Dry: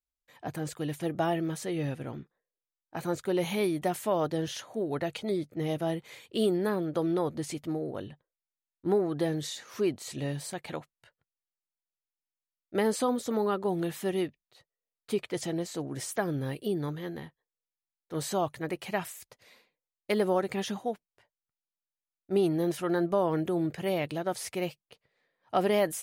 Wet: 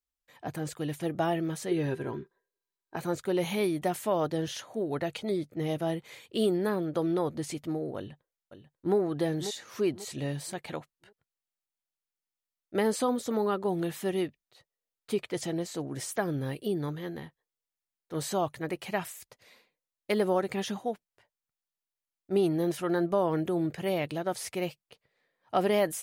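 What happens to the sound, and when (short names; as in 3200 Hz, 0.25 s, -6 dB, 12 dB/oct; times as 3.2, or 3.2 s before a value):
1.71–2.96 small resonant body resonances 390/980/1600/4000 Hz, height 16 dB, ringing for 85 ms
7.97–8.96 echo throw 0.54 s, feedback 35%, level -11 dB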